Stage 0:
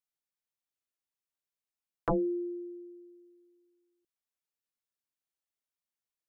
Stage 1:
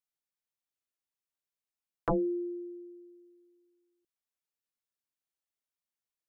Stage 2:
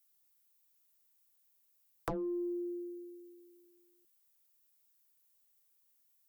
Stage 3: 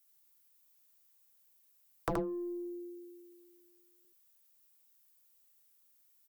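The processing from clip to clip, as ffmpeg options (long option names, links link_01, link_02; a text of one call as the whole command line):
ffmpeg -i in.wav -af anull out.wav
ffmpeg -i in.wav -filter_complex "[0:a]aeval=exprs='0.0794*(cos(1*acos(clip(val(0)/0.0794,-1,1)))-cos(1*PI/2))+0.000562*(cos(4*acos(clip(val(0)/0.0794,-1,1)))-cos(4*PI/2))+0.00501*(cos(5*acos(clip(val(0)/0.0794,-1,1)))-cos(5*PI/2))+0.00141*(cos(7*acos(clip(val(0)/0.0794,-1,1)))-cos(7*PI/2))':channel_layout=same,acrossover=split=280|1300[link_01][link_02][link_03];[link_01]acompressor=threshold=-45dB:ratio=4[link_04];[link_02]acompressor=threshold=-43dB:ratio=4[link_05];[link_03]acompressor=threshold=-57dB:ratio=4[link_06];[link_04][link_05][link_06]amix=inputs=3:normalize=0,aemphasis=mode=production:type=50fm,volume=3.5dB" out.wav
ffmpeg -i in.wav -af "aecho=1:1:76:0.668,volume=2.5dB" out.wav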